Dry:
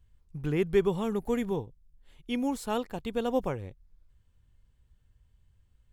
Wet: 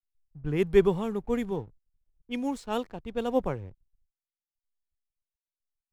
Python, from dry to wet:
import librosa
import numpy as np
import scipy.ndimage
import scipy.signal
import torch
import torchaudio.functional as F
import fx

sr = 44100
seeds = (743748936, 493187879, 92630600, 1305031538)

y = fx.env_lowpass(x, sr, base_hz=510.0, full_db=-25.5)
y = fx.backlash(y, sr, play_db=-49.0)
y = fx.band_widen(y, sr, depth_pct=70)